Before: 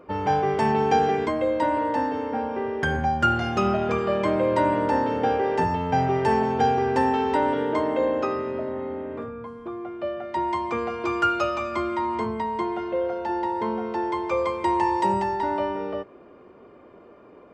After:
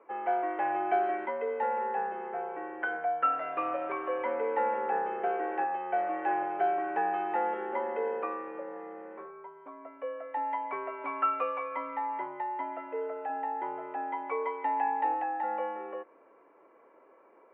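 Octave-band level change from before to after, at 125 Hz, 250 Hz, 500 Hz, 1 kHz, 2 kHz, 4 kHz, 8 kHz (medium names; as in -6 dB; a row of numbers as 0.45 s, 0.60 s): under -30 dB, -16.0 dB, -9.5 dB, -6.0 dB, -7.5 dB, under -20 dB, no reading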